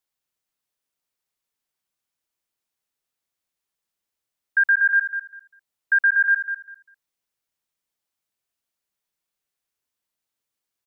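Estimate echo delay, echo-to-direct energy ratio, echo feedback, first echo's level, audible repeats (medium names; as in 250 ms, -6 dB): 199 ms, -9.5 dB, 20%, -9.5 dB, 2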